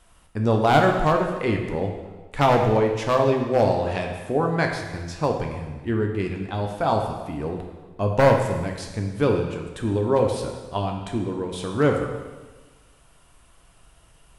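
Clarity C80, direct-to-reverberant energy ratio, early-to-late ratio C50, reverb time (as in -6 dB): 6.5 dB, 2.0 dB, 4.5 dB, 1.3 s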